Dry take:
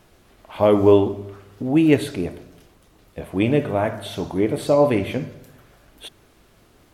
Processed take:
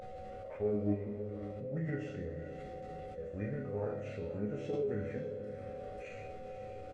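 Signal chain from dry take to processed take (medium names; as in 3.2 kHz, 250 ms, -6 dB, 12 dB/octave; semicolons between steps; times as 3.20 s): comb 1.5 ms, depth 44%; compression, threshold -18 dBFS, peak gain reduction 8.5 dB; chord resonator C#2 minor, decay 0.57 s; whistle 750 Hz -41 dBFS; formant shift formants -6 st; tape spacing loss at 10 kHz 21 dB; echo that smears into a reverb 526 ms, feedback 47%, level -11 dB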